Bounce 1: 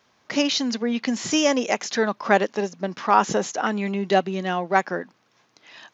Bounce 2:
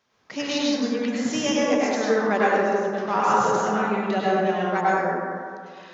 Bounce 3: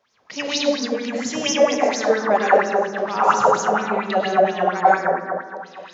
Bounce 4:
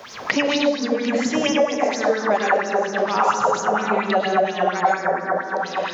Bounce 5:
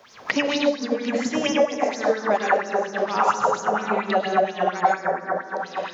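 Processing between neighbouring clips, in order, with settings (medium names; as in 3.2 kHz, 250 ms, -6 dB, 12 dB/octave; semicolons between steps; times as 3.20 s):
plate-style reverb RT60 2.2 s, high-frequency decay 0.3×, pre-delay 85 ms, DRR -8 dB; trim -8.5 dB
sweeping bell 4.3 Hz 530–6300 Hz +16 dB; trim -2.5 dB
three bands compressed up and down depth 100%; trim -2 dB
upward expansion 1.5:1, over -37 dBFS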